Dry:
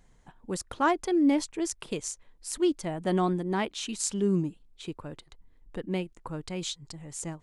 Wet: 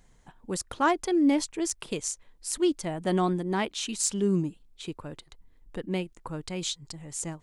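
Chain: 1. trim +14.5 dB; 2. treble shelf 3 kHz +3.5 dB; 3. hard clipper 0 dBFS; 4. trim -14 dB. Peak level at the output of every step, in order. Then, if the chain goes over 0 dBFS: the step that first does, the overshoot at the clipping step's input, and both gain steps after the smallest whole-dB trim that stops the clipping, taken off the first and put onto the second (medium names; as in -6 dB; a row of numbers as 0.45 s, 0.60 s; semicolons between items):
+3.5 dBFS, +6.5 dBFS, 0.0 dBFS, -14.0 dBFS; step 1, 6.5 dB; step 1 +7.5 dB, step 4 -7 dB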